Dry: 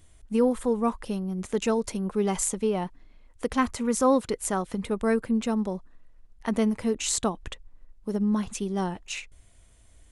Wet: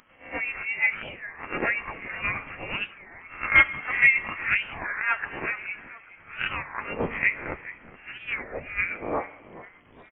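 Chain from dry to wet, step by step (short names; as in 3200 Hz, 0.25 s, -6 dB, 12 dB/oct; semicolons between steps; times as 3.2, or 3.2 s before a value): spectral swells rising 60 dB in 0.46 s; HPF 900 Hz 24 dB/oct; 3.49–4.1 transient shaper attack +8 dB, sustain -8 dB; tremolo 8.4 Hz, depth 52%; sine folder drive 4 dB, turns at -12 dBFS; flange 1.9 Hz, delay 7.5 ms, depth 4.7 ms, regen +40%; crackle 340/s -51 dBFS; frequency-shifting echo 0.421 s, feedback 47%, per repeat +120 Hz, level -16.5 dB; on a send at -14 dB: reverb RT60 1.7 s, pre-delay 5 ms; on the sum: inverted band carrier 3200 Hz; record warp 33 1/3 rpm, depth 250 cents; gain +6.5 dB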